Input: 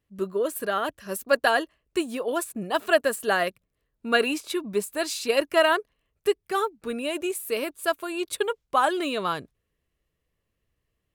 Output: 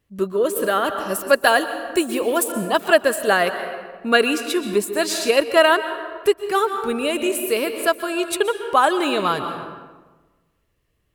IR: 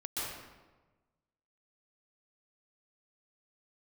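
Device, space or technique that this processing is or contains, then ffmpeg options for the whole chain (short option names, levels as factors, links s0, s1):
ducked reverb: -filter_complex "[0:a]asplit=3[s0][s1][s2];[1:a]atrim=start_sample=2205[s3];[s1][s3]afir=irnorm=-1:irlink=0[s4];[s2]apad=whole_len=491694[s5];[s4][s5]sidechaincompress=threshold=0.0631:ratio=8:attack=7.6:release=772,volume=0.473[s6];[s0][s6]amix=inputs=2:normalize=0,asettb=1/sr,asplit=3[s7][s8][s9];[s7]atrim=end=1.414[s10];[s8]atrim=start=1.41:end=2.48,asetpts=PTS-STARTPTS,afade=t=in:d=0.004:c=qsin,afade=t=out:st=1.066:d=0.004:c=qsin,highshelf=f=11000:g=12[s11];[s9]atrim=start=2.476[s12];[s10][s11]acrossfade=d=0.004:c1=hsin:c2=qsin[s13];[s13][s12]acrossfade=d=0.004:c1=qsin:c2=hsin,volume=1.78"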